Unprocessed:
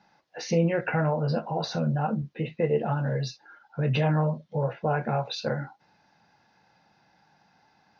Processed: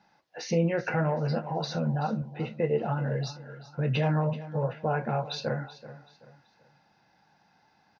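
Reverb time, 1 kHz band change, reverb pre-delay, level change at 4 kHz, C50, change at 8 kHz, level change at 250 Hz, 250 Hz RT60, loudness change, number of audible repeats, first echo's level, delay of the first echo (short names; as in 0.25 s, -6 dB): none, -2.0 dB, none, -2.0 dB, none, n/a, -2.0 dB, none, -2.0 dB, 3, -15.5 dB, 0.382 s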